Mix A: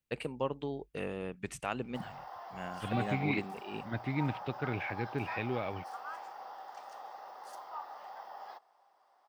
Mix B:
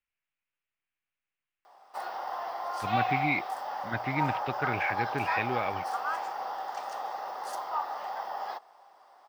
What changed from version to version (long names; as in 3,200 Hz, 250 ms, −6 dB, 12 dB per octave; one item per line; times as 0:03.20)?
first voice: muted
second voice: add parametric band 1,600 Hz +9.5 dB 2.1 octaves
background +11.0 dB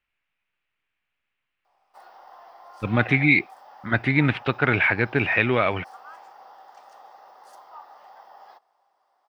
speech +11.5 dB
background −12.0 dB